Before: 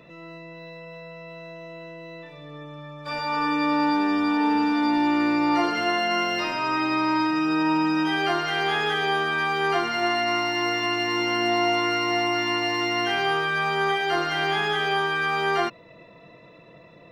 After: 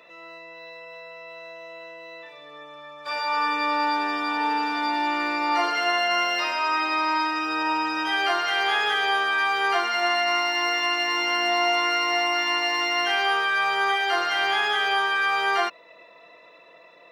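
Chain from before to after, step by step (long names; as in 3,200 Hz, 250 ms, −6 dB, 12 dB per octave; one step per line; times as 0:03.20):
high-pass filter 630 Hz 12 dB per octave
level +2.5 dB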